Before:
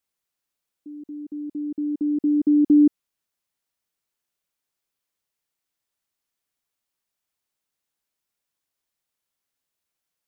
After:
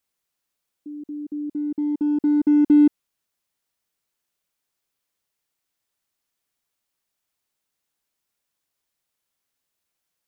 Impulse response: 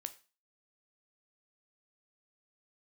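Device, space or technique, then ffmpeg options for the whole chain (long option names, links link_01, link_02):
parallel distortion: -filter_complex "[0:a]asplit=2[link_01][link_02];[link_02]asoftclip=type=hard:threshold=-26dB,volume=-8dB[link_03];[link_01][link_03]amix=inputs=2:normalize=0"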